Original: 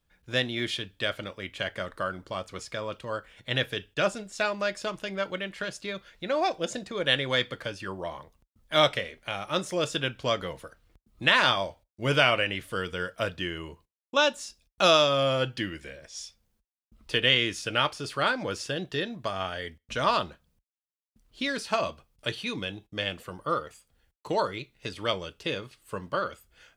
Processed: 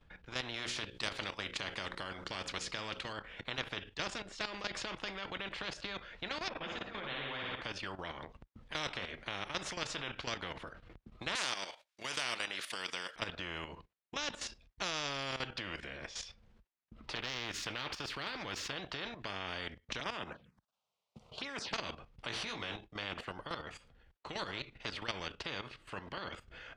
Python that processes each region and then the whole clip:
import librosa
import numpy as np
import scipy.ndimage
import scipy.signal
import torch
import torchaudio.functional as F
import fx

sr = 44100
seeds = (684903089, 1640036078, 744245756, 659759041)

y = fx.chain(x, sr, fx.high_shelf(hz=2900.0, db=11.5),
    fx.hum_notches(base_hz=60, count=9), at=(0.54, 3.13))
y = fx.chain(y, sr, fx.lowpass(hz=2400.0, slope=12),
    fx.room_flutter(wall_m=10.0, rt60_s=0.82),
    fx.ensemble(), at=(6.49, 7.62))
y = fx.chain(y, sr, fx.highpass(hz=980.0, slope=6),
    fx.tilt_eq(slope=4.5), at=(11.35, 13.16))
y = fx.chain(y, sr, fx.peak_eq(hz=640.0, db=-8.5, octaves=0.79),
    fx.resample_bad(factor=2, down='filtered', up='zero_stuff'),
    fx.transformer_sat(knee_hz=3900.0), at=(17.15, 18.73))
y = fx.chain(y, sr, fx.highpass(hz=150.0, slope=12),
    fx.env_phaser(low_hz=280.0, high_hz=4200.0, full_db=-26.5),
    fx.band_squash(depth_pct=40), at=(20.0, 21.74))
y = fx.chain(y, sr, fx.doubler(ms=18.0, db=-2.5),
    fx.env_flatten(amount_pct=70), at=(22.28, 22.76))
y = scipy.signal.sosfilt(scipy.signal.butter(2, 2900.0, 'lowpass', fs=sr, output='sos'), y)
y = fx.level_steps(y, sr, step_db=13)
y = fx.spectral_comp(y, sr, ratio=4.0)
y = F.gain(torch.from_numpy(y), -5.5).numpy()